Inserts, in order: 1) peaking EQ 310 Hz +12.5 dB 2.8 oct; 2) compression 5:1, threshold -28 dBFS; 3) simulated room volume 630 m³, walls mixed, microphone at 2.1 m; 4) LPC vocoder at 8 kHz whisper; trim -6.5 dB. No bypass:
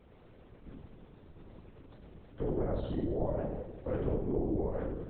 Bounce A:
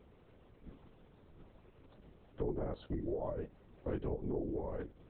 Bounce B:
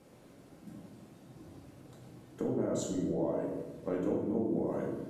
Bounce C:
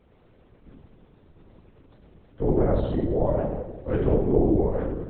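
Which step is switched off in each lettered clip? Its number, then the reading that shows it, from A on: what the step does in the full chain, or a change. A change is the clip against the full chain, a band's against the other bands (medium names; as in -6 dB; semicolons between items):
3, loudness change -5.5 LU; 4, 125 Hz band -5.0 dB; 2, mean gain reduction 6.5 dB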